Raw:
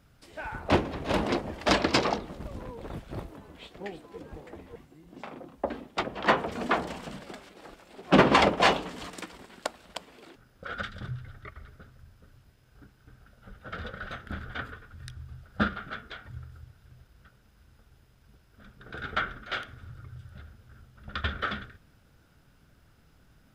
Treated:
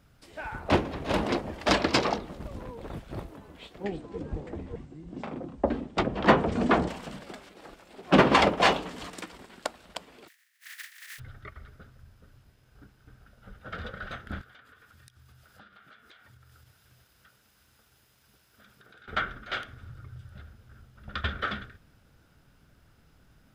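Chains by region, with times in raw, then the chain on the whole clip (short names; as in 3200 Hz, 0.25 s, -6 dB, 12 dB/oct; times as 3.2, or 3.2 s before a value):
3.84–6.89 brick-wall FIR low-pass 9100 Hz + low shelf 430 Hz +11.5 dB
10.27–11.18 spectral contrast lowered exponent 0.13 + ladder high-pass 1700 Hz, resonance 75%
14.41–19.08 HPF 54 Hz + tilt +2.5 dB/oct + compressor 8:1, threshold -52 dBFS
whole clip: dry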